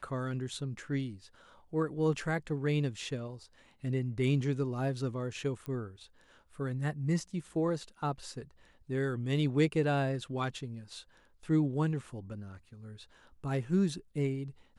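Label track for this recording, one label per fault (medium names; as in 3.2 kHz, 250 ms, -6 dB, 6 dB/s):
5.660000	5.660000	pop -27 dBFS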